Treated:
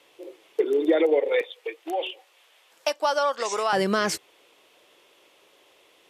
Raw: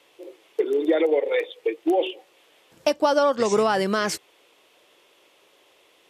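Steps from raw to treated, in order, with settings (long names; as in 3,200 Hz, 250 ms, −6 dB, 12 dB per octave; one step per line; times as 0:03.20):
0:01.41–0:03.73: high-pass filter 730 Hz 12 dB per octave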